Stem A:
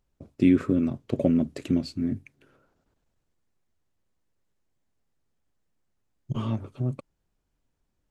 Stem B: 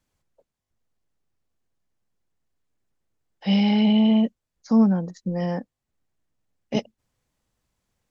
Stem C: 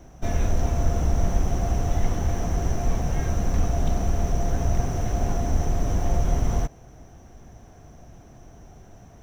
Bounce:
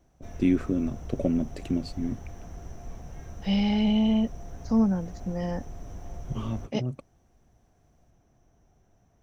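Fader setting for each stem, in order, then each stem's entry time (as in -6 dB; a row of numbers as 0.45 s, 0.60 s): -3.5 dB, -5.0 dB, -17.0 dB; 0.00 s, 0.00 s, 0.00 s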